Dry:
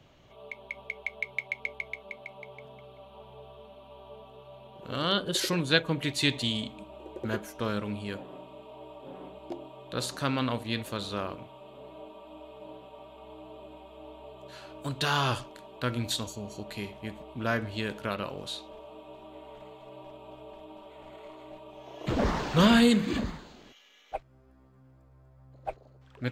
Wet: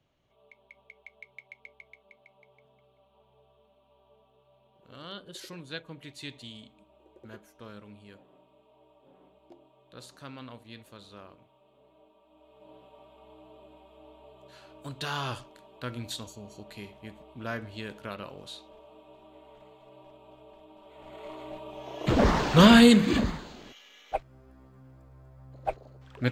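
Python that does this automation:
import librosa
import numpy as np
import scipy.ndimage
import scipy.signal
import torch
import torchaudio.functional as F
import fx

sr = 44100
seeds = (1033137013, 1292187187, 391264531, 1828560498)

y = fx.gain(x, sr, db=fx.line((12.28, -15.0), (12.78, -6.0), (20.76, -6.0), (21.32, 5.0)))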